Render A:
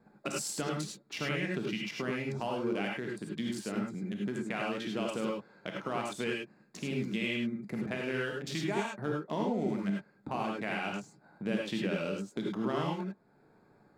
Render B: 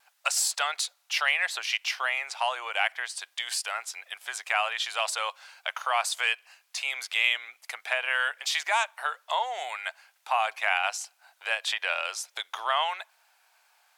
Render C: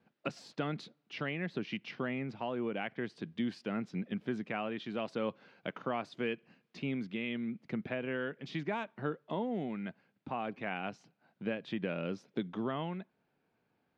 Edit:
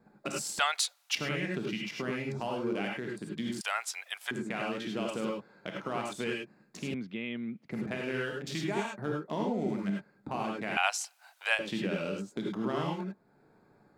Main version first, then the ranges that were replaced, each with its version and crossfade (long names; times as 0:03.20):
A
0:00.59–0:01.15: punch in from B
0:03.61–0:04.31: punch in from B
0:06.94–0:07.71: punch in from C
0:10.77–0:11.59: punch in from B